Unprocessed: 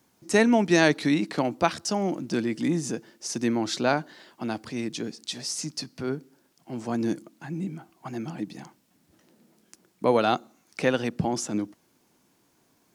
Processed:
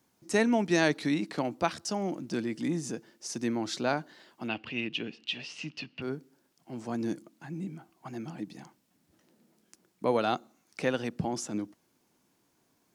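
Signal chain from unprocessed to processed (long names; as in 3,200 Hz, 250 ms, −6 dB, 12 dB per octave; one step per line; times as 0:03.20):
0:04.48–0:06.02: low-pass with resonance 2,800 Hz, resonance Q 12
level −5.5 dB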